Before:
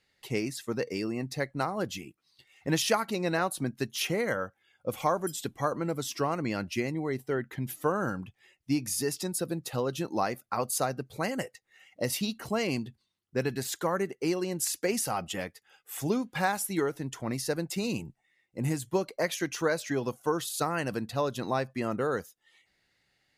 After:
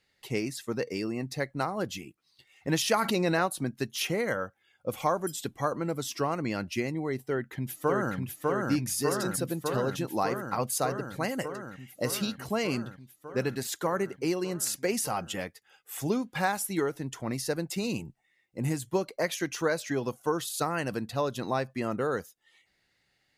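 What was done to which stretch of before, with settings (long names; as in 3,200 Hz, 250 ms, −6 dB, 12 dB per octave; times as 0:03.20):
0:02.94–0:03.46: envelope flattener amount 70%
0:07.24–0:08.16: delay throw 600 ms, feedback 80%, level −1.5 dB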